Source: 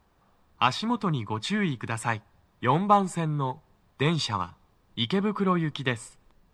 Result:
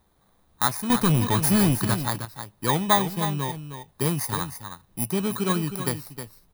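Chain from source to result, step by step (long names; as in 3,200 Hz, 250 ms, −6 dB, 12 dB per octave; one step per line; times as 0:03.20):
samples in bit-reversed order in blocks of 16 samples
0:00.90–0:01.94: leveller curve on the samples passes 3
single-tap delay 313 ms −9.5 dB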